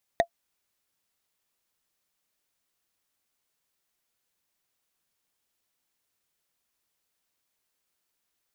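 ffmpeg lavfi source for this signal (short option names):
-f lavfi -i "aevalsrc='0.251*pow(10,-3*t/0.08)*sin(2*PI*681*t)+0.133*pow(10,-3*t/0.024)*sin(2*PI*1877.5*t)+0.0708*pow(10,-3*t/0.011)*sin(2*PI*3680.1*t)+0.0376*pow(10,-3*t/0.006)*sin(2*PI*6083.4*t)+0.02*pow(10,-3*t/0.004)*sin(2*PI*9084.5*t)':d=0.45:s=44100"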